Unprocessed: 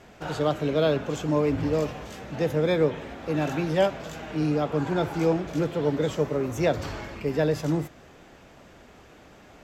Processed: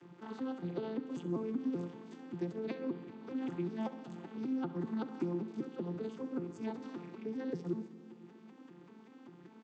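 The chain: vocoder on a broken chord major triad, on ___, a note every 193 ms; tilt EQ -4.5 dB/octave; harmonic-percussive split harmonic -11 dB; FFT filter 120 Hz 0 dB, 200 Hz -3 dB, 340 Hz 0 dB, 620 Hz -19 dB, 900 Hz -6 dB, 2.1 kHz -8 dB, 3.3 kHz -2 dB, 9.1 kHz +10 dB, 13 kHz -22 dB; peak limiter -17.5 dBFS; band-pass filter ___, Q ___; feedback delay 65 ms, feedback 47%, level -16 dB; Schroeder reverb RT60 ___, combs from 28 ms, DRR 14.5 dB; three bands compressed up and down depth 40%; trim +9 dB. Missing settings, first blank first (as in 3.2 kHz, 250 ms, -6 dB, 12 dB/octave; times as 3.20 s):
F3, 2.8 kHz, 0.6, 1.8 s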